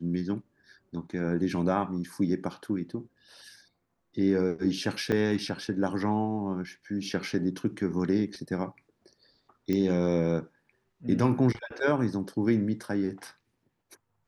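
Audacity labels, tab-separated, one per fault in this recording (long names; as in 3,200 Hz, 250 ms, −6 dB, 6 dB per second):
5.120000	5.130000	drop-out 5.1 ms
9.730000	9.730000	click −17 dBFS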